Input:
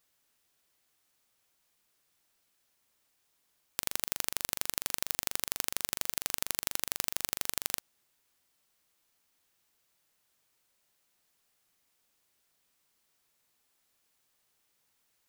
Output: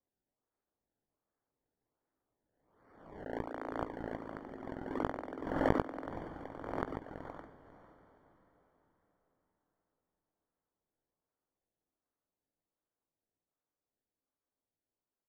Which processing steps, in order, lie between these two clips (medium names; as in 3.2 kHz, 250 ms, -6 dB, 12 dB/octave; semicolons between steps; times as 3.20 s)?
Doppler pass-by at 4.42 s, 48 m/s, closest 5.8 m; steep high-pass 250 Hz 96 dB/octave; tilt shelf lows +9.5 dB, about 770 Hz; band-stop 370 Hz, Q 12; compressor with a negative ratio -58 dBFS, ratio -1; decimation with a swept rate 26×, swing 100% 1.3 Hz; Savitzky-Golay filter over 41 samples; doubling 19 ms -12 dB; on a send: echo that smears into a reverb 502 ms, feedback 42%, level -12 dB; on the sum: swell ahead of each attack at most 55 dB/s; trim +16 dB